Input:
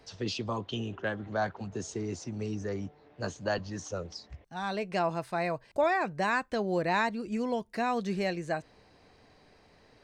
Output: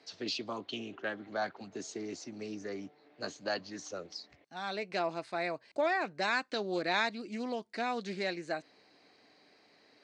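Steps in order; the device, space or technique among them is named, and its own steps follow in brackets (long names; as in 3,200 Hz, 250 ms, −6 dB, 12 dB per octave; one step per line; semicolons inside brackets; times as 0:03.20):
0:06.09–0:07.18: dynamic equaliser 4,600 Hz, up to +5 dB, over −48 dBFS, Q 0.85
full-range speaker at full volume (highs frequency-modulated by the lows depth 0.15 ms; loudspeaker in its box 270–8,500 Hz, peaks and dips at 290 Hz +4 dB, 490 Hz −3 dB, 960 Hz −4 dB, 2,200 Hz +4 dB, 4,300 Hz +7 dB)
level −3 dB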